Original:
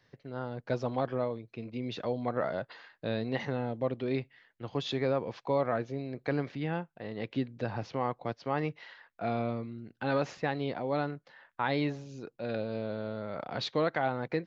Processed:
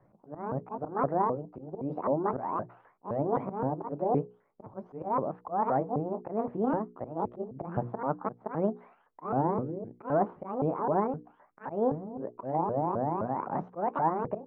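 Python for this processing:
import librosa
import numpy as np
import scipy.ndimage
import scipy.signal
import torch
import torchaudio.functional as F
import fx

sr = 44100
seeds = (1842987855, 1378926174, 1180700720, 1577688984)

p1 = fx.pitch_ramps(x, sr, semitones=11.5, every_ms=259)
p2 = scipy.signal.sosfilt(scipy.signal.butter(4, 1100.0, 'lowpass', fs=sr, output='sos'), p1)
p3 = fx.rider(p2, sr, range_db=3, speed_s=0.5)
p4 = p2 + (p3 * librosa.db_to_amplitude(2.0))
p5 = fx.auto_swell(p4, sr, attack_ms=163.0)
y = fx.hum_notches(p5, sr, base_hz=60, count=8)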